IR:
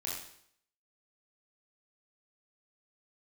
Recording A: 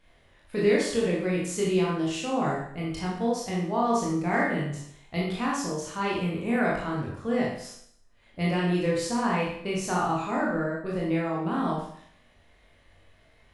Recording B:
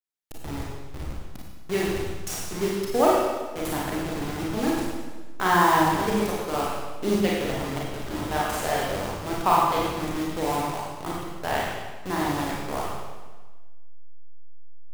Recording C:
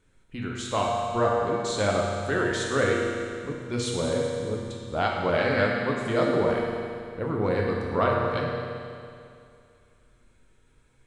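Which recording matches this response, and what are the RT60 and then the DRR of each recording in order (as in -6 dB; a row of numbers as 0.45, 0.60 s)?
A; 0.65, 1.3, 2.4 s; -5.0, -4.5, -2.5 dB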